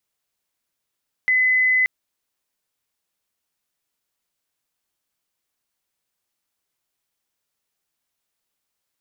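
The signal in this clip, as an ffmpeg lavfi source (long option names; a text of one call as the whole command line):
ffmpeg -f lavfi -i "aevalsrc='0.188*sin(2*PI*2020*t)':duration=0.58:sample_rate=44100" out.wav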